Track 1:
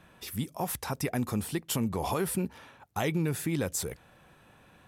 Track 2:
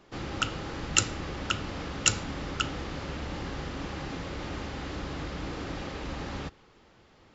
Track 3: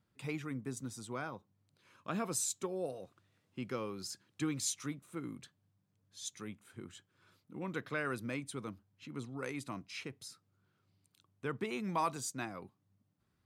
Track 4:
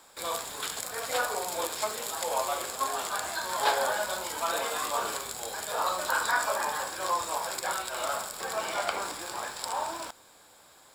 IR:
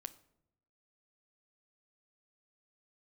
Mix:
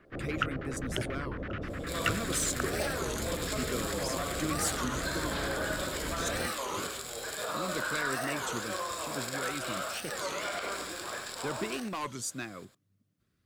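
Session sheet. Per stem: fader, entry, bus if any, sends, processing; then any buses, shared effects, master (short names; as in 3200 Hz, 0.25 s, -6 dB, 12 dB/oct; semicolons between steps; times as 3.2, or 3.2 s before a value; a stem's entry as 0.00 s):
-16.0 dB, 1.40 s, no send, no echo send, LPF 6900 Hz 12 dB/oct
-2.0 dB, 0.00 s, no send, no echo send, LFO low-pass square 9.8 Hz 640–1800 Hz
+1.0 dB, 0.00 s, no send, no echo send, harmonic-percussive split percussive +4 dB; overloaded stage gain 27 dB
+0.5 dB, 1.70 s, no send, echo send -6 dB, high shelf 5600 Hz -6 dB; limiter -23.5 dBFS, peak gain reduction 10 dB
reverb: off
echo: echo 99 ms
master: bell 870 Hz -13.5 dB 0.48 oct; record warp 33 1/3 rpm, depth 250 cents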